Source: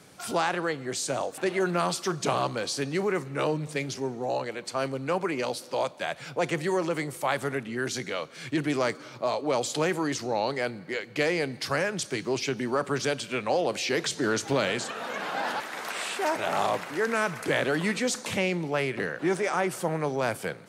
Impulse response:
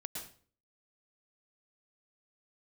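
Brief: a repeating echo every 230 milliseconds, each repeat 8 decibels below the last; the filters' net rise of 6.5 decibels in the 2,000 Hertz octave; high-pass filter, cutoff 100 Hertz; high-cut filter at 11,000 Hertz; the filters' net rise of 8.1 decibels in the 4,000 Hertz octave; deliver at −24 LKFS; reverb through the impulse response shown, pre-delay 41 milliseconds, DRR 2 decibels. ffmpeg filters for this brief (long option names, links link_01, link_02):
-filter_complex "[0:a]highpass=100,lowpass=11000,equalizer=frequency=2000:width_type=o:gain=6,equalizer=frequency=4000:width_type=o:gain=8.5,aecho=1:1:230|460|690|920|1150:0.398|0.159|0.0637|0.0255|0.0102,asplit=2[link_01][link_02];[1:a]atrim=start_sample=2205,adelay=41[link_03];[link_02][link_03]afir=irnorm=-1:irlink=0,volume=-0.5dB[link_04];[link_01][link_04]amix=inputs=2:normalize=0,volume=-1.5dB"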